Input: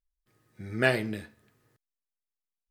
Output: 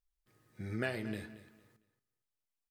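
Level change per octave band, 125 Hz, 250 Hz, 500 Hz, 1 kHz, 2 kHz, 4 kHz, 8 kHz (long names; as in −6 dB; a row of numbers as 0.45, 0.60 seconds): −7.0, −6.5, −11.5, −12.0, −12.0, −12.0, −10.0 decibels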